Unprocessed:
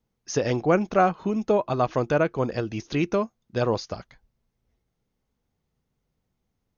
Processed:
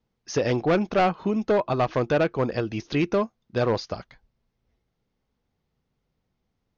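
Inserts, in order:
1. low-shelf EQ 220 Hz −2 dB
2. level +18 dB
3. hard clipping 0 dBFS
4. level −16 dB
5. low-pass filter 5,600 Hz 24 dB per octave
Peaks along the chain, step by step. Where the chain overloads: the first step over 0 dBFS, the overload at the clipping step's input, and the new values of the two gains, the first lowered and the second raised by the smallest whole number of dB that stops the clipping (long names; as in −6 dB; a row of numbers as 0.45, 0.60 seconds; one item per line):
−9.0, +9.0, 0.0, −16.0, −15.0 dBFS
step 2, 9.0 dB
step 2 +9 dB, step 4 −7 dB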